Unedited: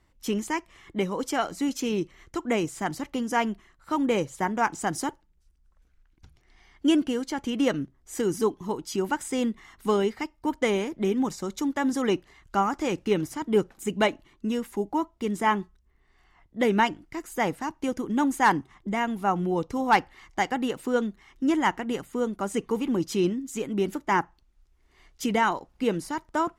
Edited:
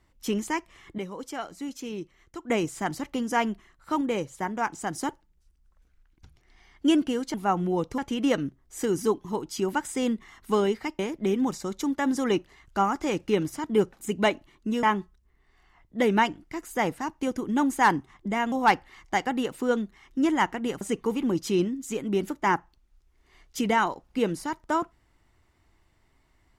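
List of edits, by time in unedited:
0:00.98–0:02.50: clip gain −8 dB
0:04.01–0:05.03: clip gain −3.5 dB
0:10.35–0:10.77: remove
0:14.61–0:15.44: remove
0:19.13–0:19.77: move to 0:07.34
0:22.06–0:22.46: remove

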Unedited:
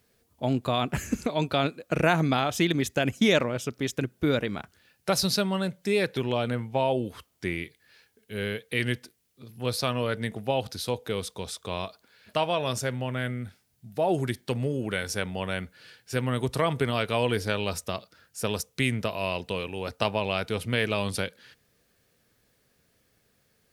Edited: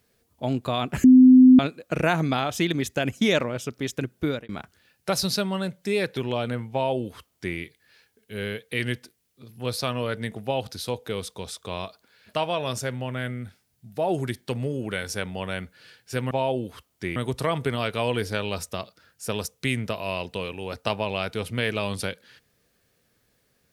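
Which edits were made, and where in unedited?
0:01.04–0:01.59: beep over 256 Hz −8 dBFS
0:04.24–0:04.49: fade out
0:06.72–0:07.57: duplicate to 0:16.31

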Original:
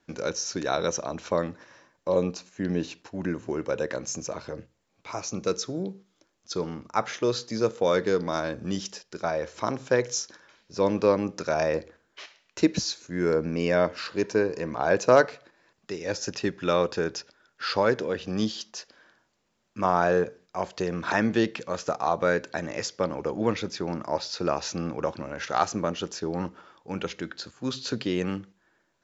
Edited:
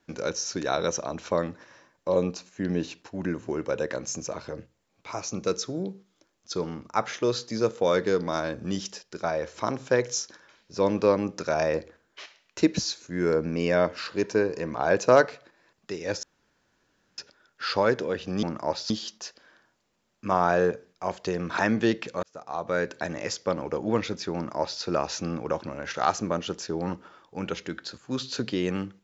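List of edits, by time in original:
0:16.23–0:17.18: fill with room tone
0:21.76–0:22.51: fade in
0:23.88–0:24.35: duplicate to 0:18.43

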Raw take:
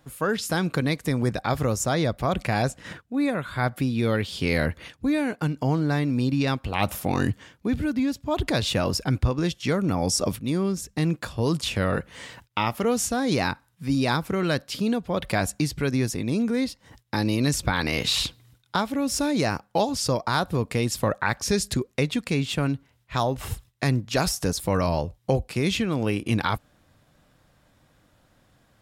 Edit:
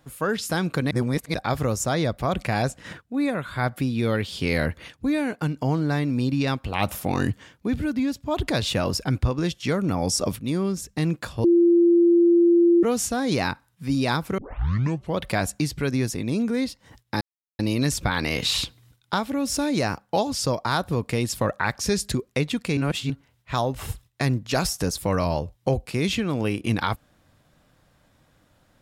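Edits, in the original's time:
0:00.91–0:01.34: reverse
0:11.44–0:12.83: beep over 343 Hz −13 dBFS
0:14.38: tape start 0.80 s
0:17.21: splice in silence 0.38 s
0:22.39–0:22.72: reverse

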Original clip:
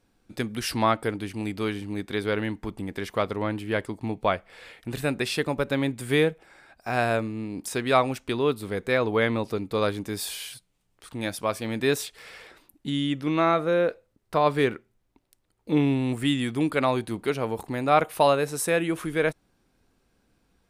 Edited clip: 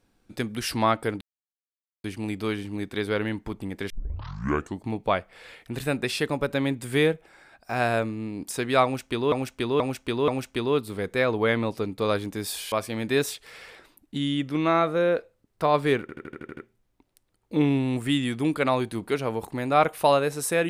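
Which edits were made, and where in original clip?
0:01.21: splice in silence 0.83 s
0:03.07: tape start 0.93 s
0:08.01–0:08.49: repeat, 4 plays
0:10.45–0:11.44: remove
0:14.73: stutter 0.08 s, 8 plays

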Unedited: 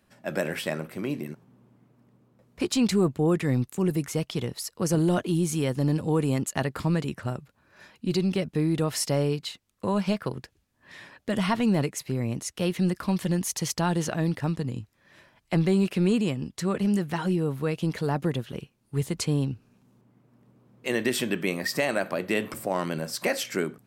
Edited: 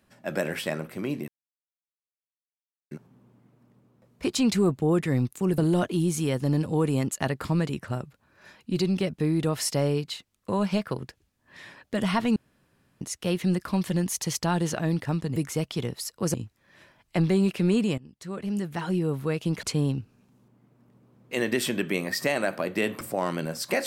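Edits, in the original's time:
0:01.28: splice in silence 1.63 s
0:03.95–0:04.93: move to 0:14.71
0:11.71–0:12.36: fill with room tone
0:16.35–0:17.45: fade in, from −19.5 dB
0:18.00–0:19.16: remove

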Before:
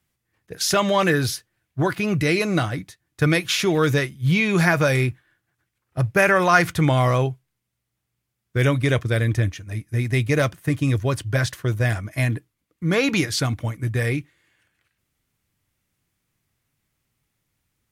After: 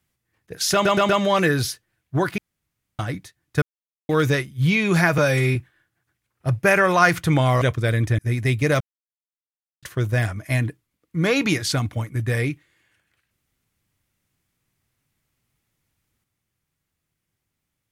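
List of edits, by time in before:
0:00.73: stutter 0.12 s, 4 plays
0:02.02–0:02.63: fill with room tone
0:03.26–0:03.73: silence
0:04.82–0:05.07: time-stretch 1.5×
0:07.13–0:08.89: remove
0:09.46–0:09.86: remove
0:10.48–0:11.50: silence

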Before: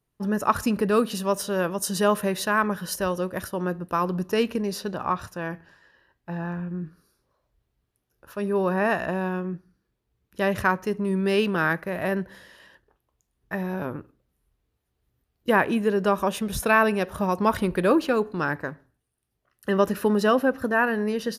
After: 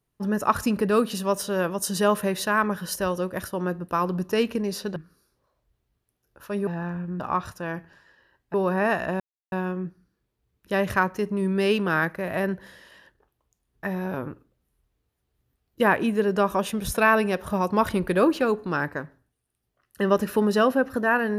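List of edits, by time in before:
0:04.96–0:06.30: swap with 0:06.83–0:08.54
0:09.20: splice in silence 0.32 s

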